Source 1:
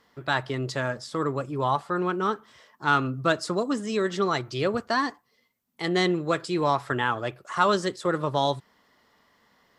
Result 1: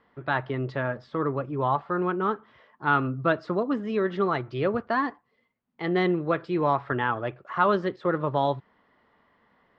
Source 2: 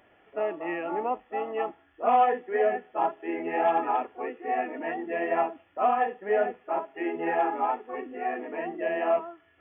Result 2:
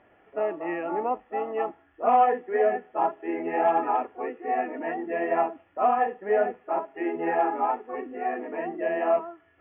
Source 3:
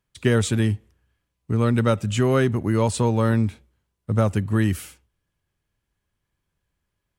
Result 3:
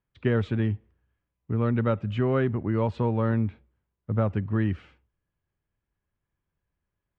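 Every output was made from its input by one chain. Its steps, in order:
Bessel low-pass 2100 Hz, order 4; match loudness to -27 LUFS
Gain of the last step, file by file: +0.5, +2.0, -4.5 dB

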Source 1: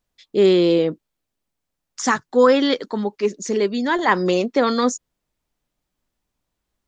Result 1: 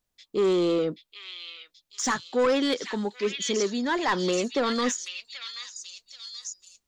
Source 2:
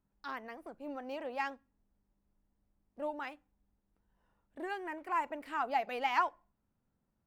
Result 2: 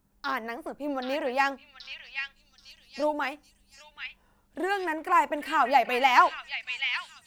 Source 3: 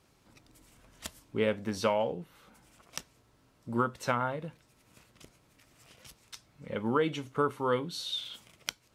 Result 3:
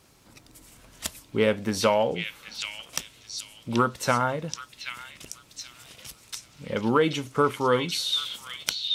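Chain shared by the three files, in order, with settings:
high shelf 4200 Hz +6 dB; soft clip -12.5 dBFS; delay with a stepping band-pass 0.78 s, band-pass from 3000 Hz, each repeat 0.7 oct, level 0 dB; match loudness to -27 LUFS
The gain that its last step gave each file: -5.0, +11.0, +6.5 dB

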